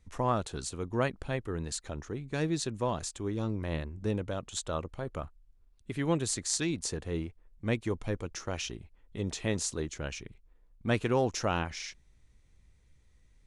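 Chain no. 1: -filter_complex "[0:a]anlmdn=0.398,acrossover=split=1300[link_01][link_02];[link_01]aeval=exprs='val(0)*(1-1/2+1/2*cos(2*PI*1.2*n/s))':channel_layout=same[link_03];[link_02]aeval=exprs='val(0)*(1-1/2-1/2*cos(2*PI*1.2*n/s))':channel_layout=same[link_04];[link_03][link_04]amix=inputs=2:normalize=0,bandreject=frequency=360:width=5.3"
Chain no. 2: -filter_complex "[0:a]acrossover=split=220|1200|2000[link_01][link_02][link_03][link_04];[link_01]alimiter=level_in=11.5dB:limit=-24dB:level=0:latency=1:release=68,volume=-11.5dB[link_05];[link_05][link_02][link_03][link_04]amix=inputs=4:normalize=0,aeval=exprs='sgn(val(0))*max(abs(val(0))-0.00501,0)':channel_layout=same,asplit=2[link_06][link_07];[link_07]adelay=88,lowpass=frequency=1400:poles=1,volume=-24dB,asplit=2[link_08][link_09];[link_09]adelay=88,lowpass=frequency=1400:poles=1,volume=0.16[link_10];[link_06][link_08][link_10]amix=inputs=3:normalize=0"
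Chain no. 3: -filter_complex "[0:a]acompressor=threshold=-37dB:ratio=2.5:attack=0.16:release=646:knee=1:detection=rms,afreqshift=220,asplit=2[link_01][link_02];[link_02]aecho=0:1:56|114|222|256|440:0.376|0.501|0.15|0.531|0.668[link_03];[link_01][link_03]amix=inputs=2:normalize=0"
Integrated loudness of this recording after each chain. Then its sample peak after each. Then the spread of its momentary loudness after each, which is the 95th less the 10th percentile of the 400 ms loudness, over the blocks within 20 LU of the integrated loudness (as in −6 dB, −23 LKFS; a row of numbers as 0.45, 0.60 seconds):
−39.0, −36.0, −40.0 LKFS; −16.5, −12.5, −23.5 dBFS; 15, 11, 9 LU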